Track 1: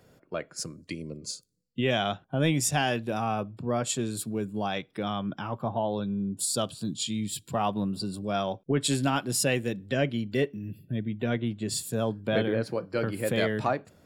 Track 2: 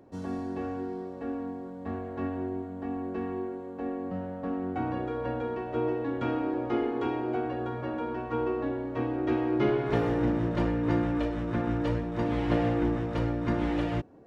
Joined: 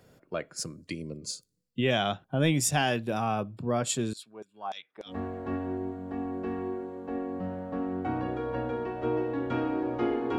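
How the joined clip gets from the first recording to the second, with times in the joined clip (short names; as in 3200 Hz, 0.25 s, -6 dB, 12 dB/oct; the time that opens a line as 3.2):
track 1
4.13–5.13 LFO band-pass saw down 3.4 Hz 650–6400 Hz
5.09 switch to track 2 from 1.8 s, crossfade 0.08 s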